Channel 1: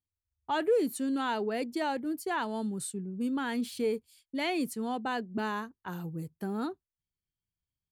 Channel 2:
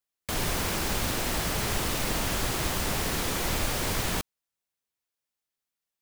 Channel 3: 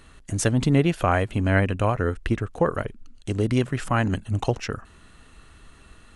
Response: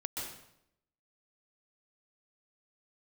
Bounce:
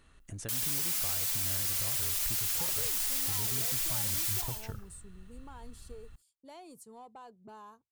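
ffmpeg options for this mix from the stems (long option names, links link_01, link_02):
-filter_complex "[0:a]equalizer=frequency=125:width_type=o:width=1:gain=9,equalizer=frequency=250:width_type=o:width=1:gain=-8,equalizer=frequency=500:width_type=o:width=1:gain=4,equalizer=frequency=1000:width_type=o:width=1:gain=9,equalizer=frequency=2000:width_type=o:width=1:gain=-11,equalizer=frequency=8000:width_type=o:width=1:gain=10,acompressor=threshold=-29dB:ratio=6,asoftclip=type=tanh:threshold=-23.5dB,adelay=2100,volume=-16.5dB[link_01];[1:a]aderivative,asplit=2[link_02][link_03];[link_03]adelay=4.4,afreqshift=0.45[link_04];[link_02][link_04]amix=inputs=2:normalize=1,adelay=200,volume=1.5dB,asplit=2[link_05][link_06];[link_06]volume=-4dB[link_07];[2:a]acompressor=threshold=-31dB:ratio=2.5,volume=-12.5dB,asplit=2[link_08][link_09];[link_09]volume=-19.5dB[link_10];[link_05][link_08]amix=inputs=2:normalize=0,asubboost=boost=5.5:cutoff=140,alimiter=level_in=3dB:limit=-24dB:level=0:latency=1,volume=-3dB,volume=0dB[link_11];[3:a]atrim=start_sample=2205[link_12];[link_07][link_10]amix=inputs=2:normalize=0[link_13];[link_13][link_12]afir=irnorm=-1:irlink=0[link_14];[link_01][link_11][link_14]amix=inputs=3:normalize=0"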